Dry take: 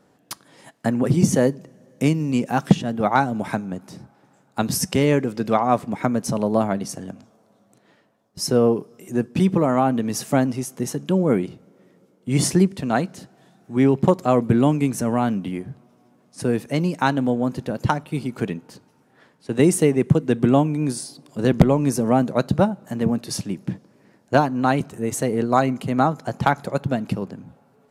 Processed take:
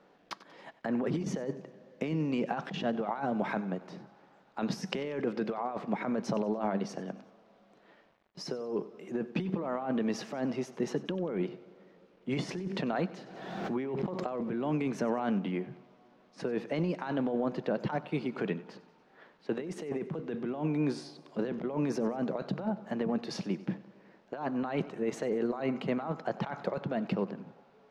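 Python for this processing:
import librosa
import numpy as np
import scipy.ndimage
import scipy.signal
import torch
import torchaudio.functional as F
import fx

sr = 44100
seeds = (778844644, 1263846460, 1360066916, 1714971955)

y = scipy.signal.sosfilt(scipy.signal.butter(4, 190.0, 'highpass', fs=sr, output='sos'), x)
y = fx.peak_eq(y, sr, hz=260.0, db=-7.5, octaves=0.55)
y = fx.over_compress(y, sr, threshold_db=-27.0, ratio=-1.0)
y = fx.quant_dither(y, sr, seeds[0], bits=10, dither='none')
y = fx.air_absorb(y, sr, metres=230.0)
y = fx.echo_feedback(y, sr, ms=94, feedback_pct=51, wet_db=-18.0)
y = fx.pre_swell(y, sr, db_per_s=39.0, at=(12.66, 14.91))
y = y * librosa.db_to_amplitude(-4.5)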